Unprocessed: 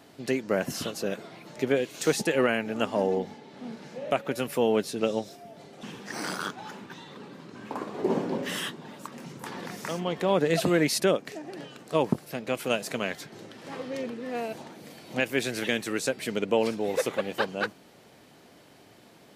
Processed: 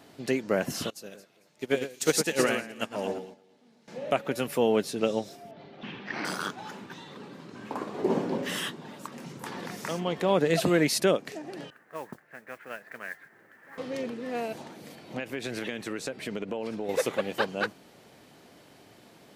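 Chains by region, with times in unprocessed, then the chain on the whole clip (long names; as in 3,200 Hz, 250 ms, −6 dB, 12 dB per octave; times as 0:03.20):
0:00.90–0:03.88: high-shelf EQ 3,000 Hz +11 dB + delay that swaps between a low-pass and a high-pass 113 ms, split 2,200 Hz, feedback 60%, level −4 dB + expander for the loud parts 2.5 to 1, over −34 dBFS
0:05.51–0:06.25: low-pass filter 4,000 Hz 24 dB per octave + dynamic equaliser 2,300 Hz, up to +6 dB, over −55 dBFS, Q 1.5 + notch filter 480 Hz
0:11.70–0:13.78: transistor ladder low-pass 1,900 Hz, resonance 70% + low-shelf EQ 490 Hz −9 dB + noise that follows the level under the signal 19 dB
0:14.95–0:16.89: high-shelf EQ 4,700 Hz −9.5 dB + downward compressor 10 to 1, threshold −28 dBFS
whole clip: no processing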